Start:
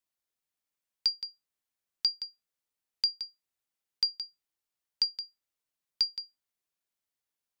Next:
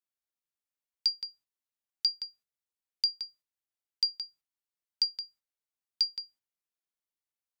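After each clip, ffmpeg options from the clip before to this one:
ffmpeg -i in.wav -af "agate=range=-8dB:threshold=-59dB:ratio=16:detection=peak,bandreject=frequency=50:width_type=h:width=6,bandreject=frequency=100:width_type=h:width=6,bandreject=frequency=150:width_type=h:width=6" out.wav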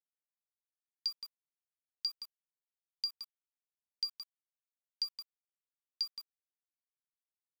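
ffmpeg -i in.wav -af "aeval=exprs='val(0)*gte(abs(val(0)),0.0106)':channel_layout=same,volume=-8dB" out.wav

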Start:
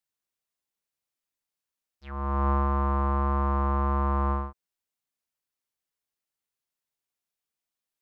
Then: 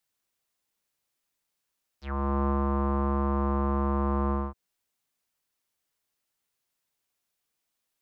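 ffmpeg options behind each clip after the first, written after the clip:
ffmpeg -i in.wav -filter_complex "[0:a]acrossover=split=130|530|1800[link_01][link_02][link_03][link_04];[link_01]acompressor=threshold=-40dB:ratio=4[link_05];[link_02]acompressor=threshold=-34dB:ratio=4[link_06];[link_03]acompressor=threshold=-42dB:ratio=4[link_07];[link_04]acompressor=threshold=-60dB:ratio=4[link_08];[link_05][link_06][link_07][link_08]amix=inputs=4:normalize=0,volume=7dB" out.wav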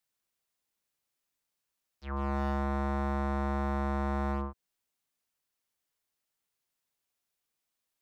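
ffmpeg -i in.wav -af "aeval=exprs='0.075*(abs(mod(val(0)/0.075+3,4)-2)-1)':channel_layout=same,volume=-3.5dB" out.wav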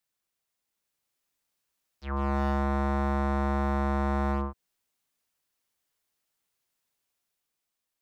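ffmpeg -i in.wav -af "dynaudnorm=framelen=220:gausssize=9:maxgain=4dB" out.wav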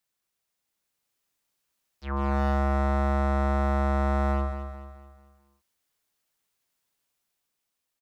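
ffmpeg -i in.wav -af "aecho=1:1:218|436|654|872|1090:0.355|0.153|0.0656|0.0282|0.0121,volume=1.5dB" out.wav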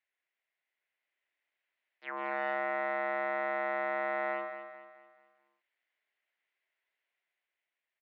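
ffmpeg -i in.wav -af "highpass=frequency=420:width=0.5412,highpass=frequency=420:width=1.3066,equalizer=frequency=470:width_type=q:width=4:gain=-8,equalizer=frequency=850:width_type=q:width=4:gain=-6,equalizer=frequency=1200:width_type=q:width=4:gain=-8,equalizer=frequency=2000:width_type=q:width=4:gain=8,lowpass=frequency=2900:width=0.5412,lowpass=frequency=2900:width=1.3066" out.wav

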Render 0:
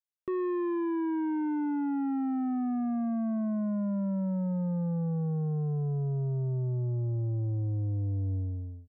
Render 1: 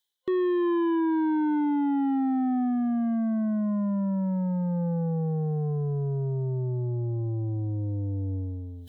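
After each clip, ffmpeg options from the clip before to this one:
ffmpeg -i in.wav -af "superequalizer=8b=0.562:10b=0.501:12b=0.562:13b=3.55,areverse,acompressor=mode=upward:threshold=-37dB:ratio=2.5,areverse,lowshelf=frequency=160:gain=-10,volume=7.5dB" out.wav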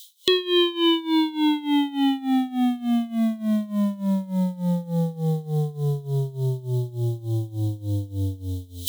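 ffmpeg -i in.wav -af "tremolo=f=3.4:d=0.89,aexciter=amount=15.6:drive=8.6:freq=2500,volume=6.5dB" out.wav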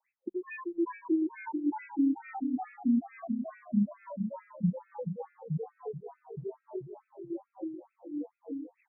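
ffmpeg -i in.wav -filter_complex "[0:a]acompressor=threshold=-31dB:ratio=6,asplit=2[link_01][link_02];[link_02]aecho=0:1:611|771:0.211|0.282[link_03];[link_01][link_03]amix=inputs=2:normalize=0,afftfilt=real='re*between(b*sr/1024,220*pow(1900/220,0.5+0.5*sin(2*PI*2.3*pts/sr))/1.41,220*pow(1900/220,0.5+0.5*sin(2*PI*2.3*pts/sr))*1.41)':imag='im*between(b*sr/1024,220*pow(1900/220,0.5+0.5*sin(2*PI*2.3*pts/sr))/1.41,220*pow(1900/220,0.5+0.5*sin(2*PI*2.3*pts/sr))*1.41)':win_size=1024:overlap=0.75,volume=7dB" out.wav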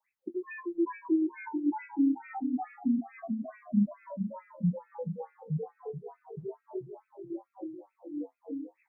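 ffmpeg -i in.wav -af "flanger=delay=9.8:depth=4.2:regen=-43:speed=0.28:shape=sinusoidal,volume=4dB" out.wav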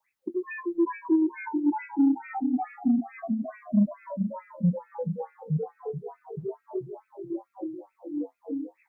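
ffmpeg -i in.wav -af "asoftclip=type=tanh:threshold=-18.5dB,volume=5.5dB" out.wav

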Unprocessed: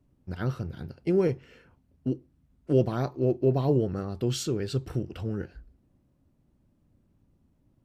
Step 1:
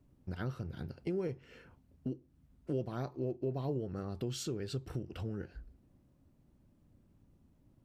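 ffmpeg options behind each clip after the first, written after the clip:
ffmpeg -i in.wav -af "acompressor=threshold=-39dB:ratio=2.5" out.wav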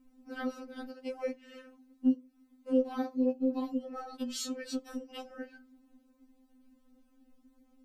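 ffmpeg -i in.wav -af "afftfilt=real='re*3.46*eq(mod(b,12),0)':imag='im*3.46*eq(mod(b,12),0)':win_size=2048:overlap=0.75,volume=7dB" out.wav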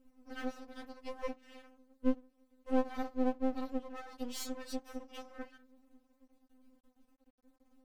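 ffmpeg -i in.wav -af "aeval=exprs='max(val(0),0)':channel_layout=same" out.wav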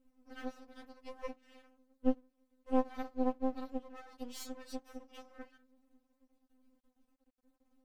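ffmpeg -i in.wav -af "aeval=exprs='0.141*(cos(1*acos(clip(val(0)/0.141,-1,1)))-cos(1*PI/2))+0.0178*(cos(3*acos(clip(val(0)/0.141,-1,1)))-cos(3*PI/2))+0.00282*(cos(7*acos(clip(val(0)/0.141,-1,1)))-cos(7*PI/2))':channel_layout=same,volume=1dB" out.wav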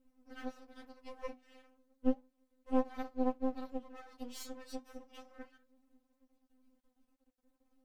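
ffmpeg -i in.wav -af "flanger=delay=3.8:depth=6.3:regen=-72:speed=0.32:shape=sinusoidal,volume=3.5dB" out.wav

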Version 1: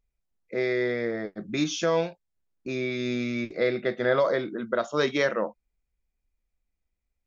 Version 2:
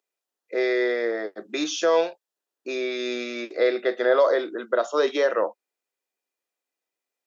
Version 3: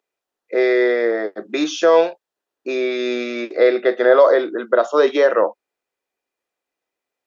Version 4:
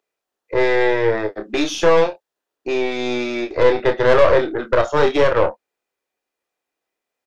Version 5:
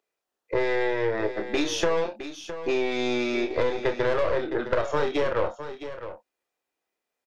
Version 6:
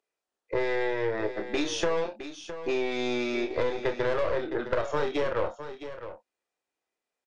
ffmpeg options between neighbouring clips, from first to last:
ffmpeg -i in.wav -filter_complex "[0:a]highpass=frequency=350:width=0.5412,highpass=frequency=350:width=1.3066,bandreject=frequency=2200:width=8.7,acrossover=split=940[link_01][link_02];[link_02]alimiter=level_in=2dB:limit=-24dB:level=0:latency=1:release=73,volume=-2dB[link_03];[link_01][link_03]amix=inputs=2:normalize=0,volume=5dB" out.wav
ffmpeg -i in.wav -af "highshelf=frequency=3800:gain=-10,volume=7.5dB" out.wav
ffmpeg -i in.wav -filter_complex "[0:a]acontrast=47,aeval=exprs='(tanh(2.24*val(0)+0.75)-tanh(0.75))/2.24':channel_layout=same,asplit=2[link_01][link_02];[link_02]adelay=28,volume=-7dB[link_03];[link_01][link_03]amix=inputs=2:normalize=0,volume=-1dB" out.wav
ffmpeg -i in.wav -af "acompressor=threshold=-18dB:ratio=6,aecho=1:1:662:0.266,volume=-2.5dB" out.wav
ffmpeg -i in.wav -af "aresample=22050,aresample=44100,volume=-3dB" out.wav

